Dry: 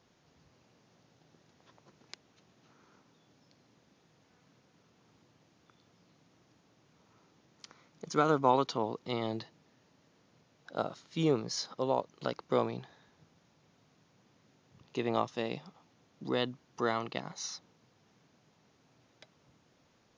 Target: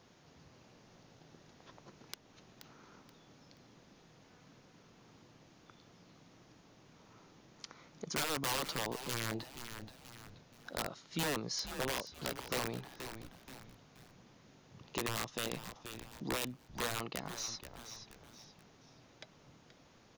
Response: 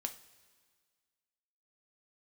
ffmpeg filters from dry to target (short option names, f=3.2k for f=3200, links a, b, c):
-filter_complex "[0:a]aeval=exprs='(mod(17.8*val(0)+1,2)-1)/17.8':c=same,asplit=4[a][b][c][d];[b]adelay=478,afreqshift=-120,volume=-13.5dB[e];[c]adelay=956,afreqshift=-240,volume=-23.4dB[f];[d]adelay=1434,afreqshift=-360,volume=-33.3dB[g];[a][e][f][g]amix=inputs=4:normalize=0,acompressor=threshold=-53dB:ratio=1.5,volume=5dB"